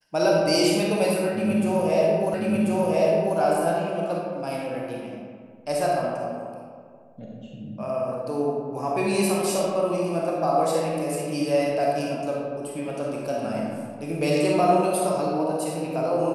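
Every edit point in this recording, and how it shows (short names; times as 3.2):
2.34 repeat of the last 1.04 s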